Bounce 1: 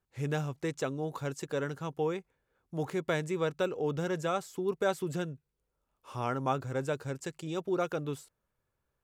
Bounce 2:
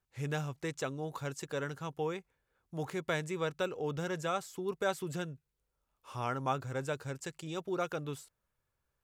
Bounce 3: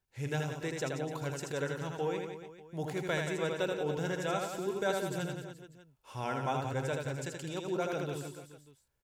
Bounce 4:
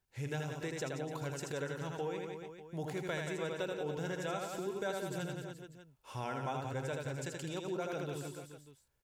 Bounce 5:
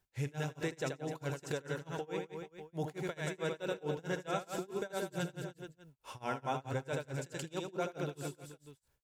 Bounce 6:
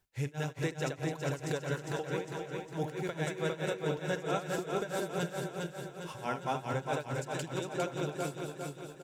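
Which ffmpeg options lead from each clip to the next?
-af "equalizer=f=310:w=0.5:g=-5"
-af "bandreject=f=1200:w=5.2,aecho=1:1:80|176|291.2|429.4|595.3:0.631|0.398|0.251|0.158|0.1"
-af "acompressor=threshold=0.01:ratio=2,volume=1.12"
-af "tremolo=f=4.6:d=0.97,volume=1.68"
-af "aecho=1:1:405|810|1215|1620|2025|2430|2835:0.631|0.328|0.171|0.0887|0.0461|0.024|0.0125,volume=1.26"

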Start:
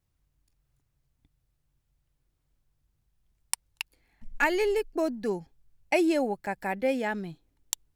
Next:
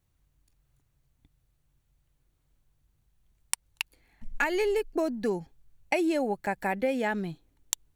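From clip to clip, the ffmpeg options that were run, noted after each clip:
-af "bandreject=f=5100:w=12,acompressor=threshold=0.0447:ratio=6,volume=1.5"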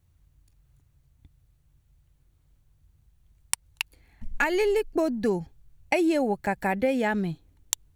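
-af "equalizer=f=78:w=0.77:g=10,volume=1.33"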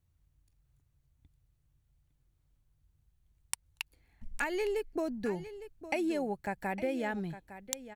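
-af "aecho=1:1:858:0.211,volume=0.355"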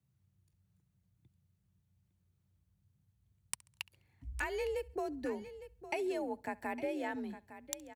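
-af "aecho=1:1:68|136|204:0.0631|0.0259|0.0106,afreqshift=47,volume=0.631"

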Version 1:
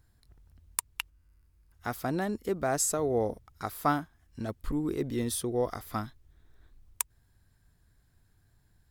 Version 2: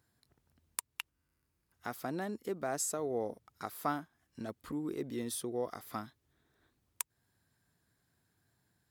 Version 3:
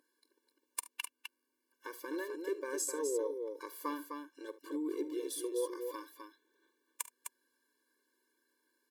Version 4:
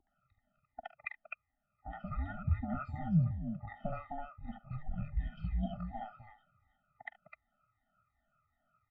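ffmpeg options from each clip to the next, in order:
-filter_complex "[0:a]highpass=160,asplit=2[s0][s1];[s1]acompressor=threshold=0.0141:ratio=6,volume=1[s2];[s0][s2]amix=inputs=2:normalize=0,volume=0.355"
-af "aeval=exprs='val(0)+0.00316*(sin(2*PI*50*n/s)+sin(2*PI*2*50*n/s)/2+sin(2*PI*3*50*n/s)/3+sin(2*PI*4*50*n/s)/4+sin(2*PI*5*50*n/s)/5)':c=same,aecho=1:1:46|73|256:0.133|0.119|0.501,afftfilt=real='re*eq(mod(floor(b*sr/1024/300),2),1)':imag='im*eq(mod(floor(b*sr/1024/300),2),1)':win_size=1024:overlap=0.75,volume=1.19"
-filter_complex "[0:a]afftfilt=real='re*pow(10,21/40*sin(2*PI*(1.2*log(max(b,1)*sr/1024/100)/log(2)-(-2.7)*(pts-256)/sr)))':imag='im*pow(10,21/40*sin(2*PI*(1.2*log(max(b,1)*sr/1024/100)/log(2)-(-2.7)*(pts-256)/sr)))':win_size=1024:overlap=0.75,acrossover=split=1100[s0][s1];[s1]adelay=70[s2];[s0][s2]amix=inputs=2:normalize=0,highpass=f=320:t=q:w=0.5412,highpass=f=320:t=q:w=1.307,lowpass=f=2700:t=q:w=0.5176,lowpass=f=2700:t=q:w=0.7071,lowpass=f=2700:t=q:w=1.932,afreqshift=-310"

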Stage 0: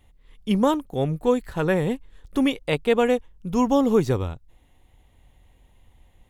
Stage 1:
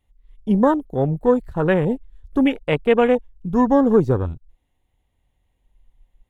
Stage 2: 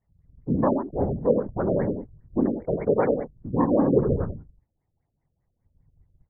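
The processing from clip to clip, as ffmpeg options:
-af "afwtdn=0.0282,volume=1.58"
-af "afftfilt=real='hypot(re,im)*cos(2*PI*random(0))':imag='hypot(re,im)*sin(2*PI*random(1))':win_size=512:overlap=0.75,aecho=1:1:87:0.447,afftfilt=real='re*lt(b*sr/1024,620*pow(2400/620,0.5+0.5*sin(2*PI*5*pts/sr)))':imag='im*lt(b*sr/1024,620*pow(2400/620,0.5+0.5*sin(2*PI*5*pts/sr)))':win_size=1024:overlap=0.75"

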